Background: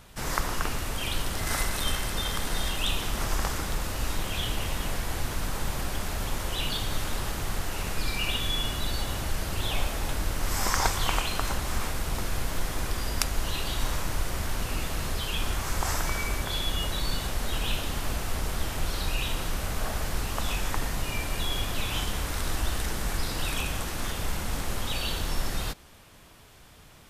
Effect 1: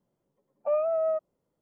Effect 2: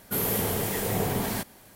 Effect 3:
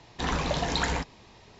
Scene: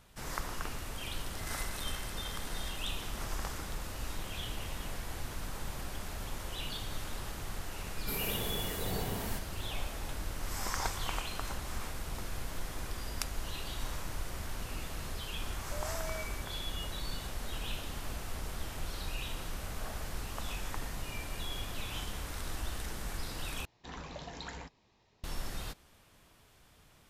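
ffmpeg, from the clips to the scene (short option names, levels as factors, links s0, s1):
-filter_complex "[0:a]volume=0.335[s0];[1:a]alimiter=level_in=1.88:limit=0.0631:level=0:latency=1:release=71,volume=0.531[s1];[s0]asplit=2[s2][s3];[s2]atrim=end=23.654[s4];[3:a]atrim=end=1.59,asetpts=PTS-STARTPTS,volume=0.15[s5];[s3]atrim=start=25.236[s6];[2:a]atrim=end=1.75,asetpts=PTS-STARTPTS,volume=0.299,afade=t=in:d=0.004:c=hsin,afade=t=out:st=1.746:d=0.004:c=hsin,adelay=7960[s7];[s1]atrim=end=1.61,asetpts=PTS-STARTPTS,volume=0.299,afade=t=in:d=0.004:c=hsin,afade=t=out:st=1.606:d=0.004:c=hsin,adelay=15050[s8];[s4][s5]acrossfade=d=0.004:c1=hsin:c2=hsin[s9];[s9][s6]acrossfade=d=0.004:c1=hsin:c2=hsin[s10];[s10][s7][s8]amix=inputs=3:normalize=0"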